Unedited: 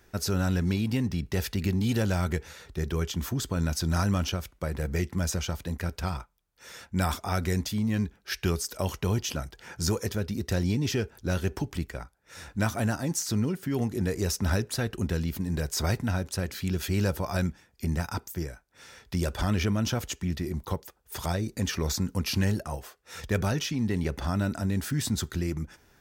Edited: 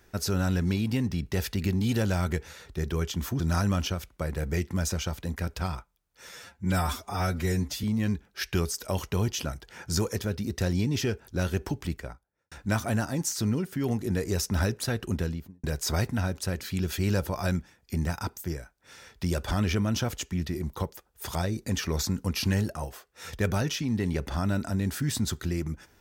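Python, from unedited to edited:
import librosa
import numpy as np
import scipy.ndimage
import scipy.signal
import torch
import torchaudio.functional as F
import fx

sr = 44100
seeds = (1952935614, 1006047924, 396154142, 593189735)

y = fx.studio_fade_out(x, sr, start_s=11.83, length_s=0.59)
y = fx.studio_fade_out(y, sr, start_s=15.05, length_s=0.49)
y = fx.edit(y, sr, fx.cut(start_s=3.4, length_s=0.42),
    fx.stretch_span(start_s=6.71, length_s=1.03, factor=1.5), tone=tone)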